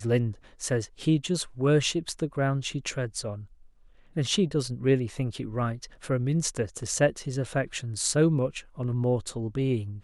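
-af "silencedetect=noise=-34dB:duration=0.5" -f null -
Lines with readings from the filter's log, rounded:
silence_start: 3.41
silence_end: 4.16 | silence_duration: 0.75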